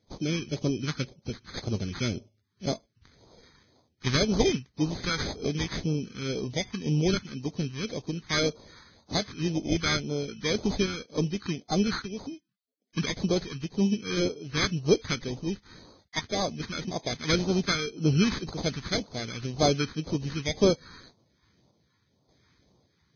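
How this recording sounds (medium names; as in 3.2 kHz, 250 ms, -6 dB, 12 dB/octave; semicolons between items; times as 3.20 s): random-step tremolo; aliases and images of a low sample rate 2.8 kHz, jitter 0%; phasing stages 2, 1.9 Hz, lowest notch 590–1700 Hz; Vorbis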